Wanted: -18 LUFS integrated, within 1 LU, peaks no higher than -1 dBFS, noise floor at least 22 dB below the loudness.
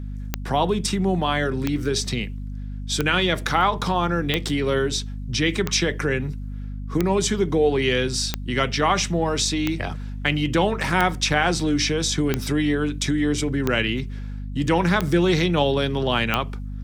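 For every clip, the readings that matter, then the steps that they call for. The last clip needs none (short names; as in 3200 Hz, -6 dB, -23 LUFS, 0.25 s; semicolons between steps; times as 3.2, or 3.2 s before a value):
clicks 13; hum 50 Hz; harmonics up to 250 Hz; hum level -29 dBFS; loudness -22.5 LUFS; peak -4.5 dBFS; loudness target -18.0 LUFS
-> de-click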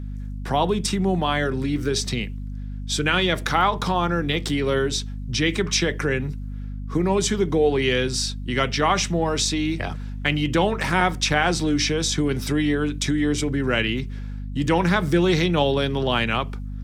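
clicks 0; hum 50 Hz; harmonics up to 250 Hz; hum level -29 dBFS
-> notches 50/100/150/200/250 Hz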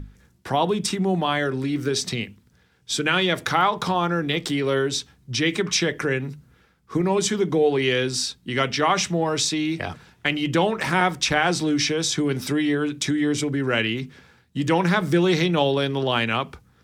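hum none; loudness -22.5 LUFS; peak -4.5 dBFS; loudness target -18.0 LUFS
-> gain +4.5 dB; limiter -1 dBFS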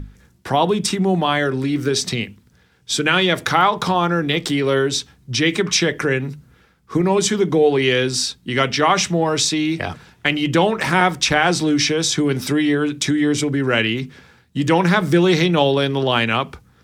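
loudness -18.0 LUFS; peak -1.0 dBFS; noise floor -55 dBFS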